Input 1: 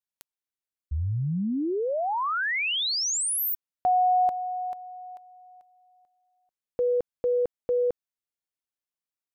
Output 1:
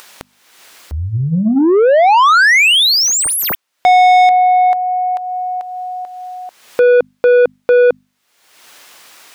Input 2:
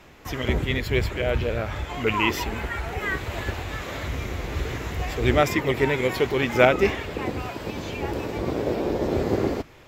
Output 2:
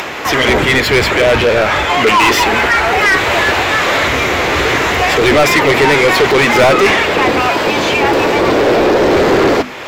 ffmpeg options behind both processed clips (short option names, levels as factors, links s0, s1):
-filter_complex "[0:a]bandreject=f=50:t=h:w=6,bandreject=f=100:t=h:w=6,bandreject=f=150:t=h:w=6,bandreject=f=200:t=h:w=6,bandreject=f=250:t=h:w=6,acompressor=mode=upward:threshold=0.0158:ratio=2.5:attack=3.7:release=390:knee=2.83:detection=peak,asplit=2[s0][s1];[s1]highpass=f=720:p=1,volume=44.7,asoftclip=type=tanh:threshold=0.891[s2];[s0][s2]amix=inputs=2:normalize=0,lowpass=f=3700:p=1,volume=0.501"